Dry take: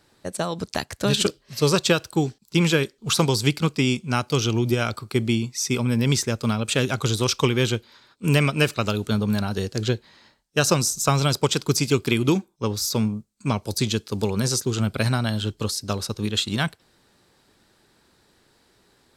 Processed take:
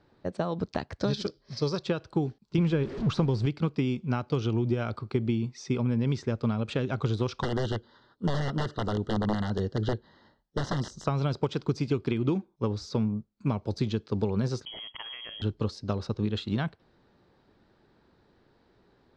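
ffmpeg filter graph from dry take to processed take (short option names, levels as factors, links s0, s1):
-filter_complex "[0:a]asettb=1/sr,asplit=3[s0][s1][s2];[s0]atrim=end=0.994[s3];[s1]atrim=start=0.99:end=1.83,asetpts=PTS-STARTPTS,afade=t=in:d=0.004:c=qsin,afade=t=out:st=0.836:d=0.004:c=qsin,equalizer=f=5200:w=1.8:g=14.5,bandreject=f=2800:w=6.8[s4];[s2]atrim=start=1.826[s5];[s3][s4]acrossfade=d=0.004:c1=hsin:c2=qsin[s6];[s6][s5]acrossfade=d=0.004:c1=qsin:c2=hsin,asettb=1/sr,asplit=3[s7][s8][s9];[s7]atrim=end=2.584[s10];[s8]atrim=start=2.58:end=3.46,asetpts=PTS-STARTPTS,afade=t=in:d=0.004:c=qsin,afade=t=out:st=0.876:d=0.004:c=qsin,aeval=exprs='val(0)+0.5*0.0355*sgn(val(0))':c=same,lowshelf=f=340:g=6.5[s11];[s9]atrim=start=3.456[s12];[s10][s11]acrossfade=d=0.004:c1=hsin:c2=qsin[s13];[s13][s12]acrossfade=d=0.004:c1=qsin:c2=hsin,asettb=1/sr,asplit=3[s14][s15][s16];[s14]atrim=end=7.424[s17];[s15]atrim=start=7.42:end=11.07,asetpts=PTS-STARTPTS,afade=t=in:d=0.004:c=qsin,afade=t=out:st=3.646:d=0.004:c=qsin,aeval=exprs='(mod(5.31*val(0)+1,2)-1)/5.31':c=same,asuperstop=centerf=2400:order=20:qfactor=3.2[s18];[s16]atrim=start=11.066[s19];[s17][s18]acrossfade=d=0.004:c1=hsin:c2=qsin[s20];[s20][s19]acrossfade=d=0.004:c1=qsin:c2=hsin,asettb=1/sr,asplit=3[s21][s22][s23];[s21]atrim=end=14.654[s24];[s22]atrim=start=14.65:end=15.42,asetpts=PTS-STARTPTS,afade=t=in:d=0.004:c=qsin,afade=t=out:st=0.766:d=0.004:c=qsin,acompressor=threshold=0.0447:ratio=5:attack=3.2:release=140:knee=1:detection=peak,lowpass=f=2900:t=q:w=0.5098,lowpass=f=2900:t=q:w=0.6013,lowpass=f=2900:t=q:w=0.9,lowpass=f=2900:t=q:w=2.563,afreqshift=-3400[s25];[s23]atrim=start=15.416[s26];[s24][s25]acrossfade=d=0.004:c1=hsin:c2=qsin[s27];[s27][s26]acrossfade=d=0.004:c1=qsin:c2=hsin,acompressor=threshold=0.0794:ratio=6,lowpass=f=4400:w=0.5412,lowpass=f=4400:w=1.3066,equalizer=f=3300:w=0.51:g=-10.5"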